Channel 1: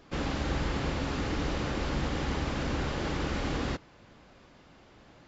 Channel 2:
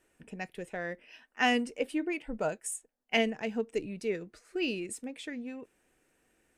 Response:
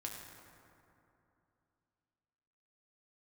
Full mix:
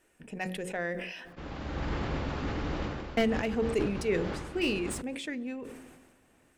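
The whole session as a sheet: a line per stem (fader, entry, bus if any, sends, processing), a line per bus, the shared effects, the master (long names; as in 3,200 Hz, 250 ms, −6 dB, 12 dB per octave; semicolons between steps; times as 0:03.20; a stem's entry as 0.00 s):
−1.5 dB, 1.25 s, no send, low-pass filter 2,500 Hz 6 dB per octave; automatic ducking −10 dB, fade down 0.35 s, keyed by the second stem
+2.5 dB, 0.00 s, muted 0:01.33–0:03.17, send −20 dB, slew-rate limiting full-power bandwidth 65 Hz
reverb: on, RT60 2.8 s, pre-delay 5 ms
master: hum removal 45.93 Hz, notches 12; level that may fall only so fast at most 43 dB per second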